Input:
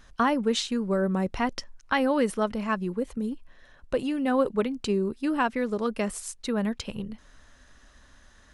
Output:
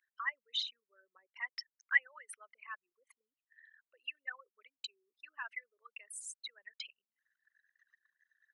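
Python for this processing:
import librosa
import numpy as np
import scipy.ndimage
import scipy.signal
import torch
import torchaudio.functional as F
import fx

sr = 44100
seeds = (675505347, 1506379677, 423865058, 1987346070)

y = fx.envelope_sharpen(x, sr, power=3.0)
y = fx.ladder_highpass(y, sr, hz=1900.0, resonance_pct=65)
y = fx.wow_flutter(y, sr, seeds[0], rate_hz=2.1, depth_cents=22.0)
y = F.gain(torch.from_numpy(y), 2.5).numpy()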